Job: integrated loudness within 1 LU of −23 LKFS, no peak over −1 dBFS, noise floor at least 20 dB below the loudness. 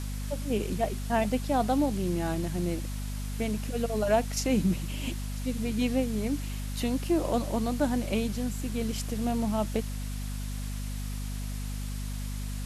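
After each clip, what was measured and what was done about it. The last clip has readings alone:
mains hum 50 Hz; hum harmonics up to 250 Hz; level of the hum −32 dBFS; background noise floor −34 dBFS; target noise floor −51 dBFS; integrated loudness −30.5 LKFS; sample peak −13.5 dBFS; target loudness −23.0 LKFS
→ hum removal 50 Hz, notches 5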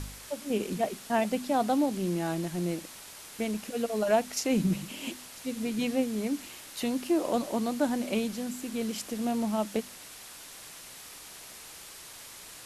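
mains hum none found; background noise floor −47 dBFS; target noise floor −51 dBFS
→ broadband denoise 6 dB, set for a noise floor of −47 dBFS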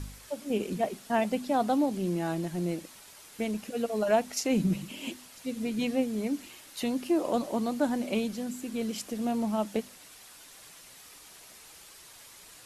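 background noise floor −52 dBFS; integrated loudness −31.0 LKFS; sample peak −13.5 dBFS; target loudness −23.0 LKFS
→ level +8 dB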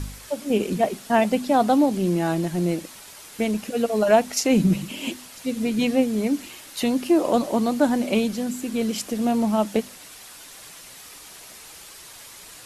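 integrated loudness −23.0 LKFS; sample peak −5.5 dBFS; background noise floor −44 dBFS

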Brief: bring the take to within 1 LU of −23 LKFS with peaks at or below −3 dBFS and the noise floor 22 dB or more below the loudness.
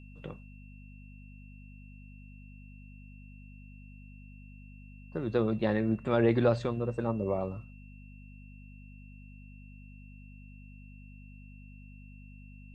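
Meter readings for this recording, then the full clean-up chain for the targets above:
mains hum 50 Hz; hum harmonics up to 250 Hz; level of the hum −47 dBFS; interfering tone 2,700 Hz; level of the tone −59 dBFS; integrated loudness −30.0 LKFS; sample peak −12.5 dBFS; target loudness −23.0 LKFS
→ hum removal 50 Hz, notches 5
notch filter 2,700 Hz, Q 30
level +7 dB

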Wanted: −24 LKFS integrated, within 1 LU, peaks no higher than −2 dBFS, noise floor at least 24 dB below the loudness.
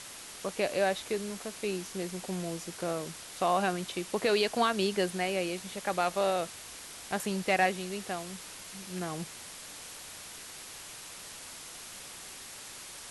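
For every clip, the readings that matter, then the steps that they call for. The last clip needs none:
background noise floor −46 dBFS; target noise floor −58 dBFS; integrated loudness −33.5 LKFS; sample peak −14.5 dBFS; target loudness −24.0 LKFS
→ broadband denoise 12 dB, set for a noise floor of −46 dBFS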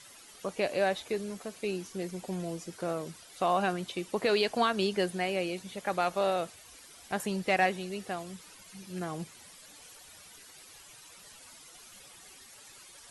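background noise floor −53 dBFS; target noise floor −56 dBFS
→ broadband denoise 6 dB, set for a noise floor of −53 dBFS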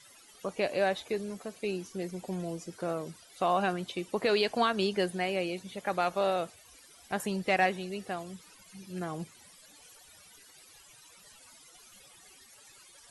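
background noise floor −57 dBFS; integrated loudness −32.0 LKFS; sample peak −14.5 dBFS; target loudness −24.0 LKFS
→ level +8 dB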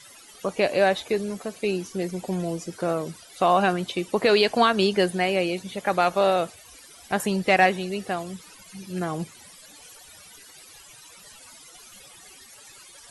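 integrated loudness −24.0 LKFS; sample peak −6.5 dBFS; background noise floor −49 dBFS

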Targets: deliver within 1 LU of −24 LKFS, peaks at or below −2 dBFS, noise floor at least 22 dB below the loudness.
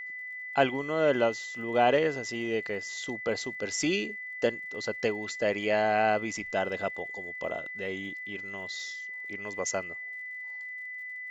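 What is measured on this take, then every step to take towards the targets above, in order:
crackle rate 57 per second; interfering tone 2,000 Hz; level of the tone −37 dBFS; integrated loudness −30.5 LKFS; sample peak −9.0 dBFS; target loudness −24.0 LKFS
→ click removal
notch filter 2,000 Hz, Q 30
level +6.5 dB

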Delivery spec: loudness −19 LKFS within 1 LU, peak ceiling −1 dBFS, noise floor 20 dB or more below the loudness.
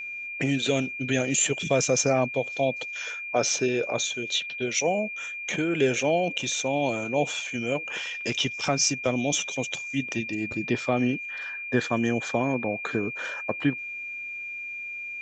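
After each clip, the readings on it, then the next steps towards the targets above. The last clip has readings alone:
interfering tone 2,400 Hz; level of the tone −33 dBFS; integrated loudness −26.5 LKFS; sample peak −10.0 dBFS; target loudness −19.0 LKFS
→ notch filter 2,400 Hz, Q 30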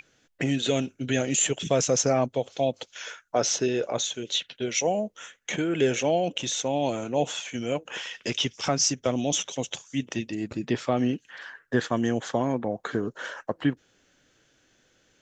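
interfering tone none found; integrated loudness −27.0 LKFS; sample peak −10.5 dBFS; target loudness −19.0 LKFS
→ level +8 dB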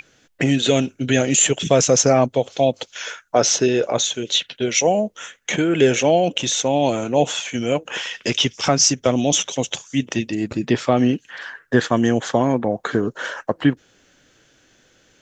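integrated loudness −19.0 LKFS; sample peak −2.5 dBFS; background noise floor −58 dBFS

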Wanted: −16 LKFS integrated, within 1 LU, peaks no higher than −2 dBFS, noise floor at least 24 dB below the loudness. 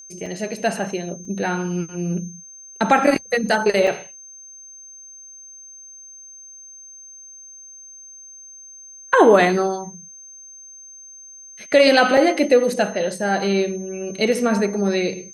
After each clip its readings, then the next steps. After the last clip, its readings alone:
number of dropouts 4; longest dropout 3.4 ms; interfering tone 6,300 Hz; level of the tone −39 dBFS; integrated loudness −19.0 LKFS; sample peak −2.5 dBFS; target loudness −16.0 LKFS
→ repair the gap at 0:00.26/0:01.25/0:03.87/0:12.17, 3.4 ms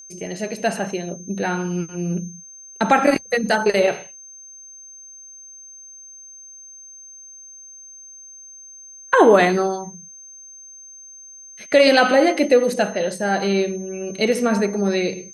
number of dropouts 0; interfering tone 6,300 Hz; level of the tone −39 dBFS
→ notch filter 6,300 Hz, Q 30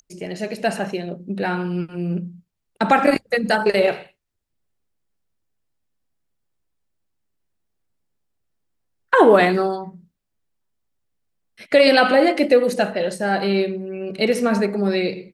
interfering tone none found; integrated loudness −19.0 LKFS; sample peak −2.5 dBFS; target loudness −16.0 LKFS
→ level +3 dB
brickwall limiter −2 dBFS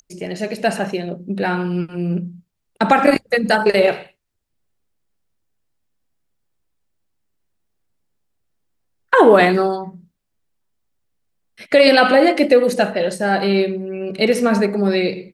integrated loudness −16.5 LKFS; sample peak −2.0 dBFS; background noise floor −72 dBFS

